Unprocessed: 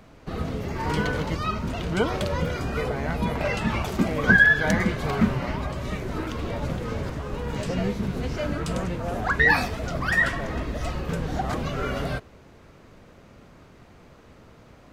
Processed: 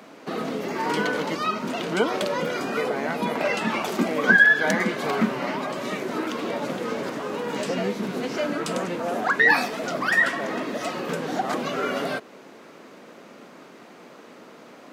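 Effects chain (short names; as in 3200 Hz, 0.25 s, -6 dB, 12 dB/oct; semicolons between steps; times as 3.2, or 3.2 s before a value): HPF 220 Hz 24 dB/oct; in parallel at +2 dB: compressor, threshold -35 dBFS, peak gain reduction 21 dB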